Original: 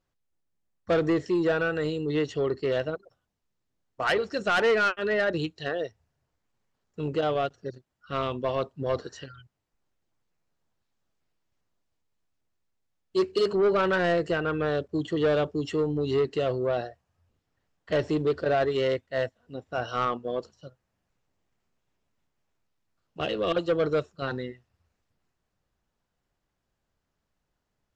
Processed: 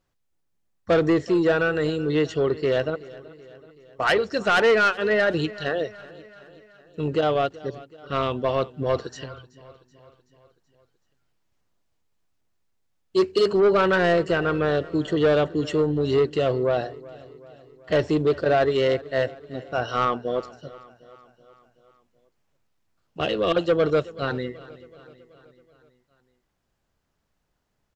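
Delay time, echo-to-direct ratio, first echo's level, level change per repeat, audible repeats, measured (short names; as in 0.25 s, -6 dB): 0.378 s, -18.5 dB, -20.0 dB, -5.0 dB, 4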